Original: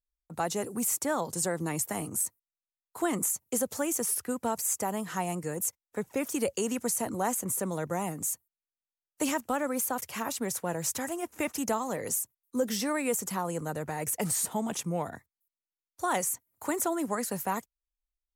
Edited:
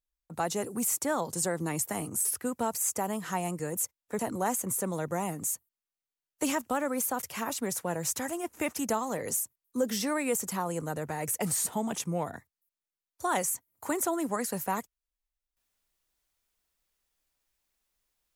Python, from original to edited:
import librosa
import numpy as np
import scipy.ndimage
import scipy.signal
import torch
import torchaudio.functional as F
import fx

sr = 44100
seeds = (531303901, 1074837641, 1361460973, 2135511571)

y = fx.edit(x, sr, fx.cut(start_s=2.25, length_s=1.84),
    fx.cut(start_s=6.03, length_s=0.95), tone=tone)